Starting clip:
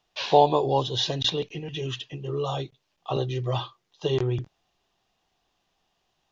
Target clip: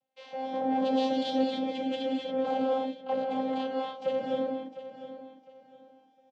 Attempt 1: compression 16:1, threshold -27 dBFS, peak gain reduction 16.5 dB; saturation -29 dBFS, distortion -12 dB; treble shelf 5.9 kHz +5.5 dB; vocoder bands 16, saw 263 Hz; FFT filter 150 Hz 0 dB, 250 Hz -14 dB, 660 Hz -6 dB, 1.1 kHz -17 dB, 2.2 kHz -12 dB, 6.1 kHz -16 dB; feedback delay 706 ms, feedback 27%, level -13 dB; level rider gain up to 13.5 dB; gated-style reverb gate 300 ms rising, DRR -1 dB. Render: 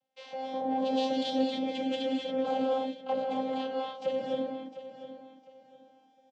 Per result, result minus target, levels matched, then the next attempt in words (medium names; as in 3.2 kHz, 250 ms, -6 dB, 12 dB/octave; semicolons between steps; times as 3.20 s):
compression: peak gain reduction +6.5 dB; 8 kHz band +4.0 dB
compression 16:1, threshold -20 dBFS, peak gain reduction 9.5 dB; saturation -29 dBFS, distortion -8 dB; treble shelf 5.9 kHz +5.5 dB; vocoder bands 16, saw 263 Hz; FFT filter 150 Hz 0 dB, 250 Hz -14 dB, 660 Hz -6 dB, 1.1 kHz -17 dB, 2.2 kHz -12 dB, 6.1 kHz -16 dB; feedback delay 706 ms, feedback 27%, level -13 dB; level rider gain up to 13.5 dB; gated-style reverb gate 300 ms rising, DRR -1 dB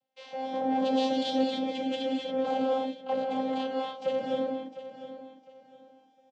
8 kHz band +4.5 dB
compression 16:1, threshold -20 dBFS, peak gain reduction 9.5 dB; saturation -29 dBFS, distortion -8 dB; treble shelf 5.9 kHz -4 dB; vocoder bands 16, saw 263 Hz; FFT filter 150 Hz 0 dB, 250 Hz -14 dB, 660 Hz -6 dB, 1.1 kHz -17 dB, 2.2 kHz -12 dB, 6.1 kHz -16 dB; feedback delay 706 ms, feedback 27%, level -13 dB; level rider gain up to 13.5 dB; gated-style reverb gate 300 ms rising, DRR -1 dB